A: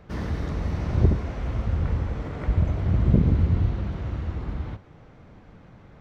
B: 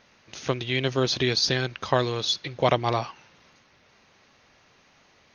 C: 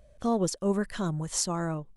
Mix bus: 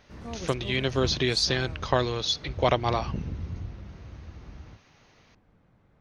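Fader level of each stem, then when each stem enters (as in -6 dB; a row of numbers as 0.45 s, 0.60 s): -14.0 dB, -1.5 dB, -13.0 dB; 0.00 s, 0.00 s, 0.00 s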